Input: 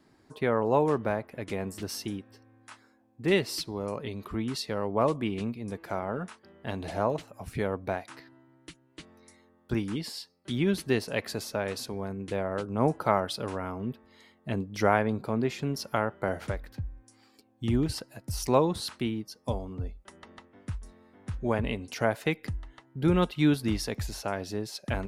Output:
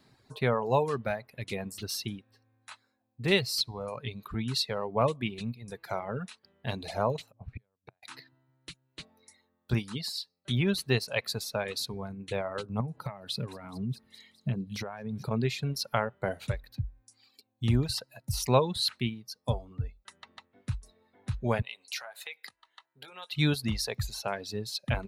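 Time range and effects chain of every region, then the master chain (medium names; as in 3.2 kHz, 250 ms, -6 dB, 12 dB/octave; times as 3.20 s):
7.32–8.03 s: level-controlled noise filter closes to 300 Hz, open at -29.5 dBFS + inverted gate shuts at -27 dBFS, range -38 dB
12.80–15.31 s: feedback echo behind a high-pass 208 ms, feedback 59%, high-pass 4.7 kHz, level -8 dB + compression, threshold -36 dBFS + peaking EQ 170 Hz +10.5 dB 1.9 oct
21.62–23.32 s: compression 10:1, threshold -32 dBFS + high-pass 770 Hz + doubling 21 ms -10.5 dB
whole clip: graphic EQ with 31 bands 125 Hz +8 dB, 315 Hz -9 dB, 2.5 kHz +4 dB, 4 kHz +10 dB; reverb removal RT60 2 s; treble shelf 9.9 kHz +4.5 dB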